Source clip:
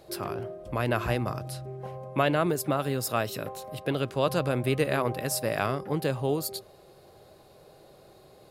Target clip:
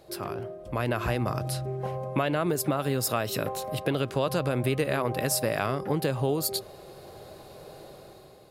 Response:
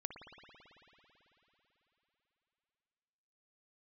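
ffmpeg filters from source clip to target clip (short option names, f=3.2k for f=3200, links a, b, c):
-filter_complex "[0:a]dynaudnorm=f=710:g=3:m=10dB,asplit=2[a][b];[b]alimiter=limit=-10.5dB:level=0:latency=1:release=118,volume=0.5dB[c];[a][c]amix=inputs=2:normalize=0,acompressor=threshold=-16dB:ratio=3,volume=-7.5dB"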